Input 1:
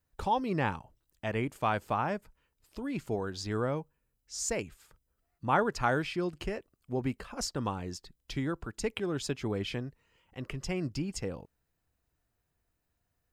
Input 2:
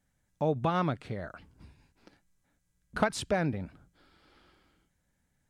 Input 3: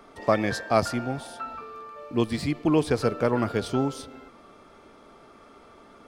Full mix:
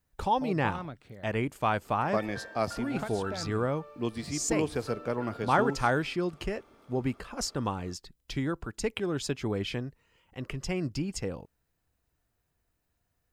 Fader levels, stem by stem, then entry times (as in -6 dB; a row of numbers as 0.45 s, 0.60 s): +2.0 dB, -10.5 dB, -8.0 dB; 0.00 s, 0.00 s, 1.85 s